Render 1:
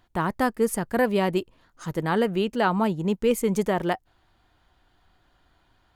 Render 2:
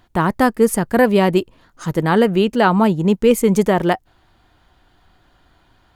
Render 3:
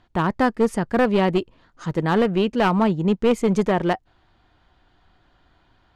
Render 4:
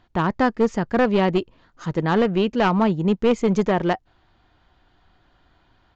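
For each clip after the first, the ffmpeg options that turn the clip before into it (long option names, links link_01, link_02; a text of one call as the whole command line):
ffmpeg -i in.wav -af "equalizer=frequency=200:width_type=o:width=2.4:gain=2,volume=7.5dB" out.wav
ffmpeg -i in.wav -af "lowpass=5300,aeval=exprs='clip(val(0),-1,0.211)':channel_layout=same,volume=-4dB" out.wav
ffmpeg -i in.wav -af "aresample=16000,aresample=44100" out.wav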